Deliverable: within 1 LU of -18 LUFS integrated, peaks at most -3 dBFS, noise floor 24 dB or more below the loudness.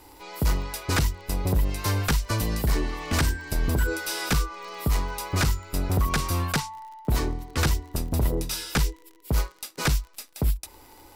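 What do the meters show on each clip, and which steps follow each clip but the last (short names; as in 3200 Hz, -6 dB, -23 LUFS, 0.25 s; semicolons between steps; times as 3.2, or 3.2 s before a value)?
ticks 38/s; loudness -27.0 LUFS; peak -15.0 dBFS; loudness target -18.0 LUFS
-> de-click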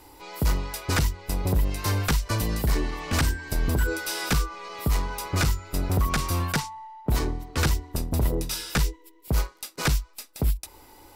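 ticks 0.45/s; loudness -27.5 LUFS; peak -14.5 dBFS; loudness target -18.0 LUFS
-> gain +9.5 dB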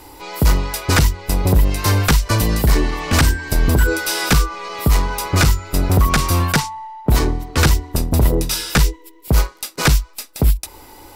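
loudness -18.0 LUFS; peak -5.0 dBFS; noise floor -44 dBFS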